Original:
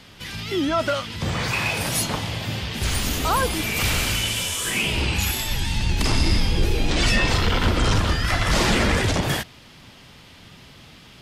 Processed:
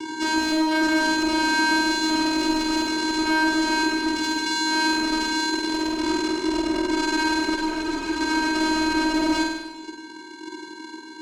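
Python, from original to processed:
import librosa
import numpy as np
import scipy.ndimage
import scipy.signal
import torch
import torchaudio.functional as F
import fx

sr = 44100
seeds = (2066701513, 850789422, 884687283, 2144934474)

y = fx.highpass(x, sr, hz=190.0, slope=24, at=(1.28, 2.1))
y = fx.rider(y, sr, range_db=3, speed_s=0.5)
y = fx.formant_cascade(y, sr, vowel='i', at=(3.85, 4.46))
y = fx.fuzz(y, sr, gain_db=39.0, gate_db=-44.0)
y = fx.vocoder(y, sr, bands=4, carrier='square', carrier_hz=315.0)
y = fx.clip_asym(y, sr, top_db=-16.5, bottom_db=-11.0)
y = fx.room_flutter(y, sr, wall_m=8.5, rt60_s=1.0)
y = fx.ensemble(y, sr, at=(7.56, 8.21))
y = y * 10.0 ** (-3.5 / 20.0)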